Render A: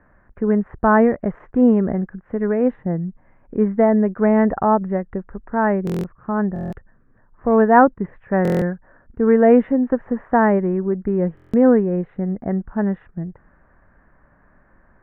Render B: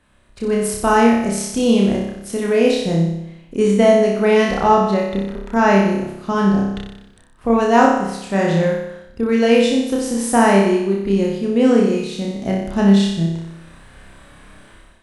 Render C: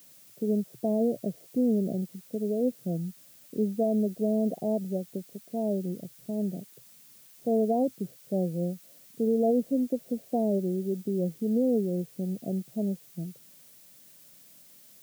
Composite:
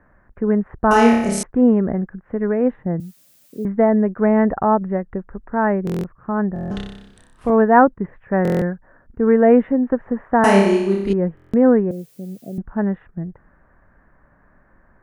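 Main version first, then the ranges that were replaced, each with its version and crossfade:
A
0:00.91–0:01.43: punch in from B
0:03.00–0:03.65: punch in from C
0:06.71–0:07.50: punch in from B
0:10.44–0:11.13: punch in from B
0:11.91–0:12.58: punch in from C

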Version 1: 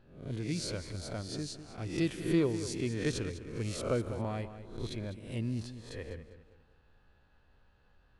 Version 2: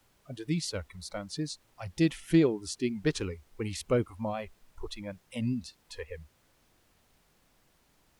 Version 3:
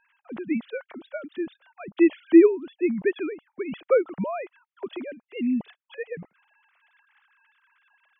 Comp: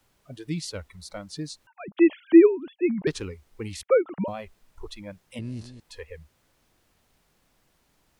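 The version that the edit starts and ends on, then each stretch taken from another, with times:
2
0:01.67–0:03.07: punch in from 3
0:03.83–0:04.28: punch in from 3
0:05.39–0:05.80: punch in from 1

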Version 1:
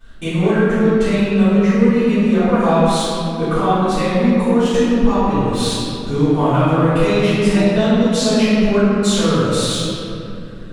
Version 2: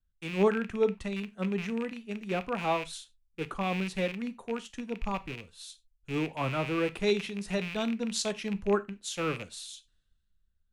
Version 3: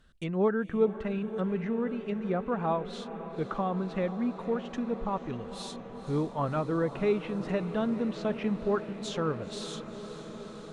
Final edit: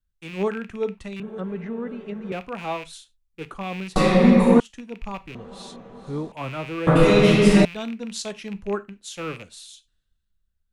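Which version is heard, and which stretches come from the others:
2
0:01.20–0:02.32: punch in from 3
0:03.96–0:04.60: punch in from 1
0:05.35–0:06.32: punch in from 3
0:06.87–0:07.65: punch in from 1

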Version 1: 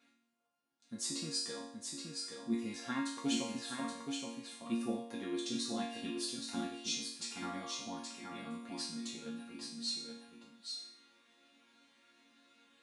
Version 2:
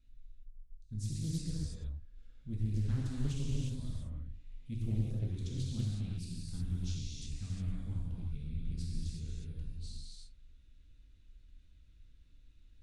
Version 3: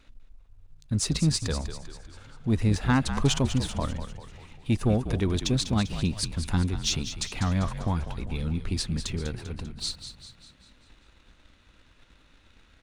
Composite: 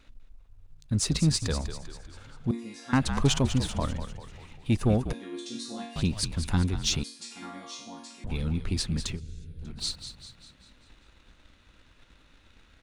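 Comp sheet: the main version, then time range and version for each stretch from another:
3
0:02.51–0:02.93: punch in from 1
0:05.13–0:05.96: punch in from 1
0:07.04–0:08.24: punch in from 1
0:09.16–0:09.65: punch in from 2, crossfade 0.10 s

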